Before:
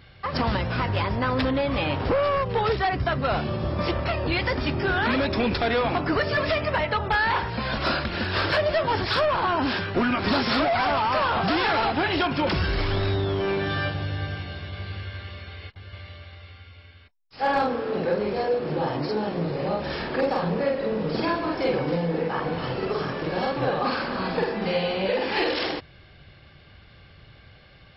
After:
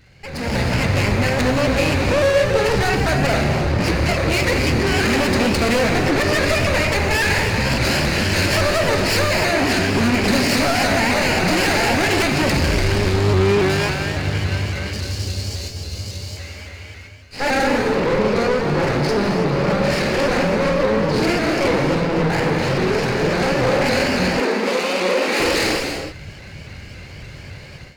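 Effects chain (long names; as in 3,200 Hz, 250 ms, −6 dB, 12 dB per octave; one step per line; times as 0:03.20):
lower of the sound and its delayed copy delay 0.42 ms
0:14.93–0:16.37: drawn EQ curve 390 Hz 0 dB, 2,100 Hz −12 dB, 4,700 Hz +8 dB
soft clipping −30.5 dBFS, distortion −8 dB
parametric band 3,300 Hz −3 dB 0.28 octaves
reverb whose tail is shaped and stops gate 350 ms flat, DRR 2.5 dB
automatic gain control gain up to 13.5 dB
0:24.40–0:25.40: Chebyshev high-pass filter 230 Hz, order 4
pitch modulation by a square or saw wave saw up 3.6 Hz, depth 100 cents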